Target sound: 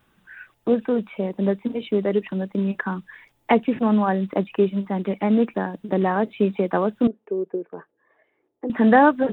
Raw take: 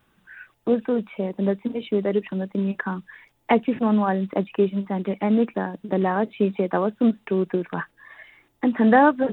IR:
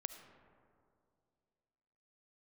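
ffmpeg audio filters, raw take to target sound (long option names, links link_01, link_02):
-filter_complex "[0:a]asettb=1/sr,asplit=3[link_01][link_02][link_03];[link_01]atrim=end=7.074[link_04];[link_02]atrim=start=7.07:end=8.7,asetpts=PTS-STARTPTS,afade=type=in:duration=0.004:curve=qsin,afade=type=out:start_time=1.626:duration=0.004:curve=qsin,bandpass=frequency=440:width_type=q:width=2.9:csg=0[link_05];[link_03]atrim=start=8.696[link_06];[link_04][link_05]acrossfade=duration=0.004:curve1=hsin:curve2=qsin[link_07];[link_07][link_06]acrossfade=duration=0.004:curve1=qsin:curve2=hsin,volume=1dB"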